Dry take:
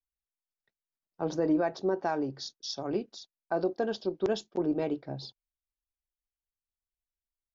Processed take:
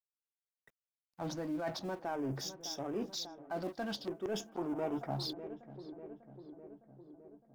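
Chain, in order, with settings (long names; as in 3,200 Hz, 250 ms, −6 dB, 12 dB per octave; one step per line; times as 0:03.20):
mu-law and A-law mismatch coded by mu
auto-filter notch square 0.49 Hz 420–4,200 Hz
in parallel at −10.5 dB: gain into a clipping stage and back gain 32.5 dB
on the sum: feedback echo with a low-pass in the loop 603 ms, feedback 66%, low-pass 1,700 Hz, level −19 dB
reversed playback
downward compressor 5 to 1, threshold −37 dBFS, peak gain reduction 13.5 dB
reversed playback
gain on a spectral selection 0:04.55–0:05.24, 640–1,500 Hz +8 dB
pitch vibrato 0.4 Hz 28 cents
level +1 dB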